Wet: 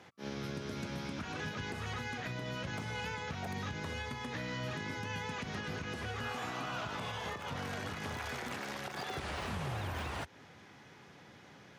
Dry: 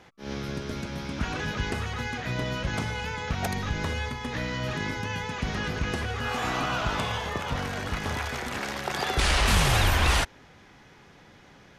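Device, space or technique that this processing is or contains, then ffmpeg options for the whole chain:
podcast mastering chain: -af "highpass=f=85:w=0.5412,highpass=f=85:w=1.3066,deesser=0.85,acompressor=threshold=0.0224:ratio=2,alimiter=level_in=1.33:limit=0.0631:level=0:latency=1:release=174,volume=0.75,volume=0.75" -ar 48000 -c:a libmp3lame -b:a 112k

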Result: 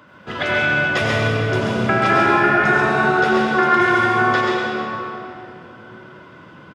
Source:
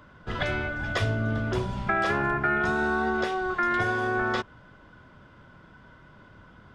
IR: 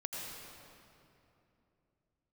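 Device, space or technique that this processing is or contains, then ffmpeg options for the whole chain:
PA in a hall: -filter_complex "[0:a]highpass=160,equalizer=f=2600:t=o:w=0.45:g=4,aecho=1:1:136:0.562[s0];[1:a]atrim=start_sample=2205[s1];[s0][s1]afir=irnorm=-1:irlink=0,volume=2.66"

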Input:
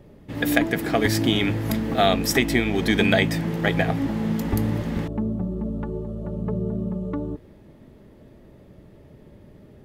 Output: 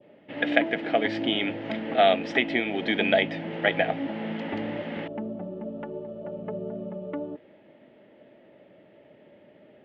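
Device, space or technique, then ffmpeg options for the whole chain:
phone earpiece: -af "highpass=340,equalizer=f=410:t=q:w=4:g=-5,equalizer=f=600:t=q:w=4:g=5,equalizer=f=1100:t=q:w=4:g=-8,equalizer=f=2100:t=q:w=4:g=3,equalizer=f=3000:t=q:w=4:g=6,lowpass=f=3100:w=0.5412,lowpass=f=3100:w=1.3066,adynamicequalizer=threshold=0.0141:dfrequency=1800:dqfactor=0.71:tfrequency=1800:tqfactor=0.71:attack=5:release=100:ratio=0.375:range=3.5:mode=cutabove:tftype=bell"

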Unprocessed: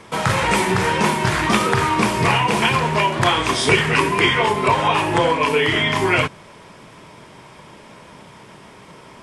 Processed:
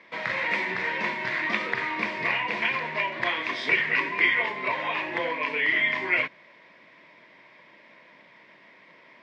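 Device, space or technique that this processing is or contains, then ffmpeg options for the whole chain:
phone earpiece: -af "highpass=370,equalizer=f=420:t=q:w=4:g=-10,equalizer=f=820:t=q:w=4:g=-10,equalizer=f=1300:t=q:w=4:g=-10,equalizer=f=2000:t=q:w=4:g=9,equalizer=f=3100:t=q:w=4:g=-6,lowpass=f=4000:w=0.5412,lowpass=f=4000:w=1.3066,volume=0.447"

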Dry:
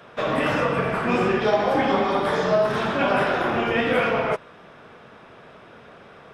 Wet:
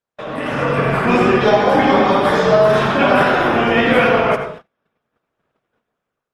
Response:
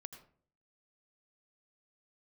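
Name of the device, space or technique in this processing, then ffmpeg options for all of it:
speakerphone in a meeting room: -filter_complex "[1:a]atrim=start_sample=2205[s0];[0:a][s0]afir=irnorm=-1:irlink=0,dynaudnorm=f=260:g=5:m=3.98,agate=range=0.0141:threshold=0.02:ratio=16:detection=peak,volume=1.26" -ar 48000 -c:a libopus -b:a 24k

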